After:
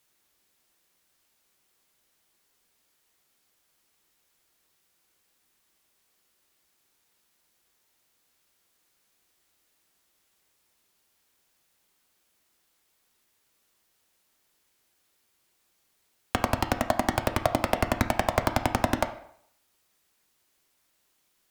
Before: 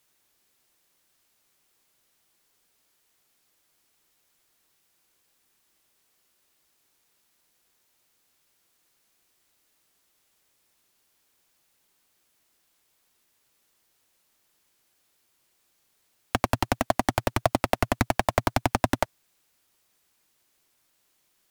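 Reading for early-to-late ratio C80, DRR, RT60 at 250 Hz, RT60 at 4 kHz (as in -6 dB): 14.5 dB, 7.0 dB, 0.60 s, 0.55 s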